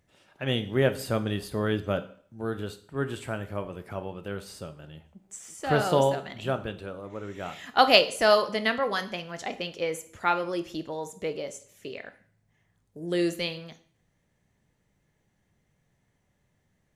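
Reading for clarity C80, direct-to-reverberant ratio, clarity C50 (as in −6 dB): 19.0 dB, 10.0 dB, 15.0 dB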